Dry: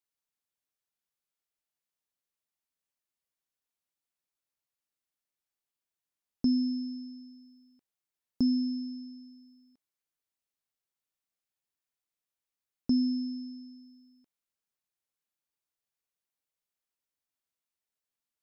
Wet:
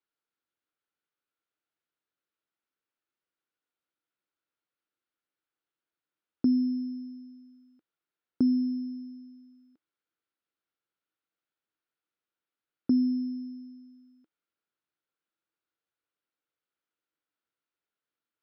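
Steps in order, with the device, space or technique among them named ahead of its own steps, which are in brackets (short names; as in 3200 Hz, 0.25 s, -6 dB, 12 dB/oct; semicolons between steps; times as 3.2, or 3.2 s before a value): guitar cabinet (speaker cabinet 79–4100 Hz, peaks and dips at 320 Hz +9 dB, 470 Hz +5 dB, 1400 Hz +9 dB)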